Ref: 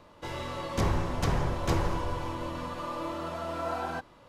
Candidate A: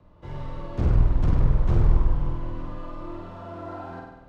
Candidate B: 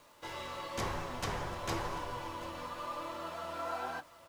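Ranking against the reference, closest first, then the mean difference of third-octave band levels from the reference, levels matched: B, A; 4.5, 9.5 decibels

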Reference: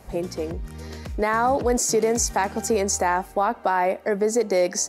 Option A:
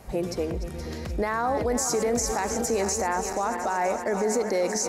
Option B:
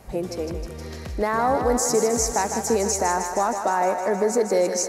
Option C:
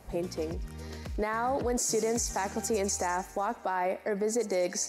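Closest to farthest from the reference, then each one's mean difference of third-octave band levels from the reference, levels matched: C, B, A; 3.0, 4.5, 6.0 decibels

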